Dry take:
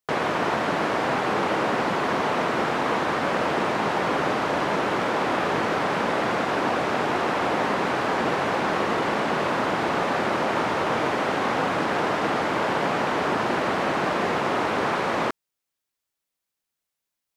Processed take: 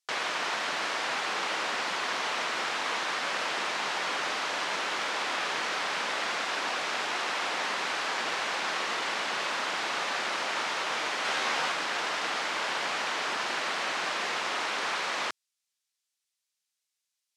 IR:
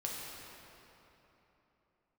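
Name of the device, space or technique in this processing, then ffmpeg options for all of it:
piezo pickup straight into a mixer: -filter_complex "[0:a]lowpass=6100,aderivative,lowshelf=frequency=100:width_type=q:width=1.5:gain=-8,asettb=1/sr,asplit=3[link_01][link_02][link_03];[link_01]atrim=end=11.234[link_04];[link_02]atrim=start=11.23:end=11.72,asetpts=PTS-STARTPTS,afade=type=in:duration=0.004:curve=qsin,afade=type=out:start_time=0.486:duration=0.004:curve=qsin,asplit=2[link_05][link_06];[link_06]adelay=13,volume=-2dB[link_07];[link_05][link_07]amix=inputs=2:normalize=0,atrim=end_sample=21609[link_08];[link_03]atrim=start=11.716[link_09];[link_04][link_08]acrossfade=duration=0.004:curve1=hsin:curve2=qsin[link_10];[link_10][link_09]acrossfade=duration=0.004:curve1=qsin:curve2=hsin,volume=9dB"

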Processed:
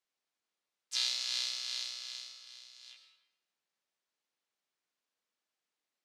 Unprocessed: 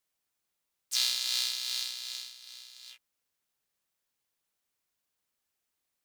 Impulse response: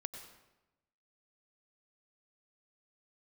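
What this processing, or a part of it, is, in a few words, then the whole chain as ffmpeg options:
supermarket ceiling speaker: -filter_complex "[0:a]highpass=220,lowpass=6100[link_01];[1:a]atrim=start_sample=2205[link_02];[link_01][link_02]afir=irnorm=-1:irlink=0"

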